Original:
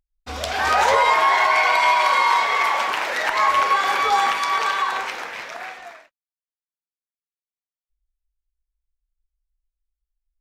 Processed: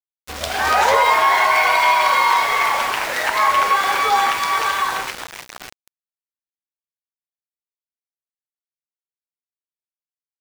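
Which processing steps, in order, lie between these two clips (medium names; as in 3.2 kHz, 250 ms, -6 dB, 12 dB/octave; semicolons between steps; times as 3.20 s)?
small samples zeroed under -27 dBFS; trim +2 dB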